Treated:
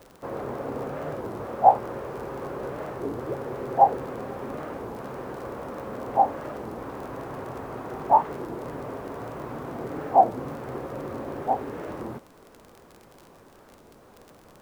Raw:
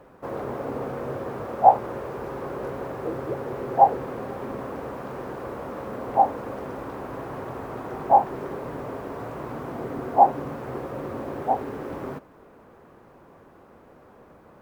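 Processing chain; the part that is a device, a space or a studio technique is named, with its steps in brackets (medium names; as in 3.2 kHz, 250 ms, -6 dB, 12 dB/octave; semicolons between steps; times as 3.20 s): warped LP (warped record 33 1/3 rpm, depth 250 cents; crackle 36 per s -34 dBFS; pink noise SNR 34 dB); trim -1.5 dB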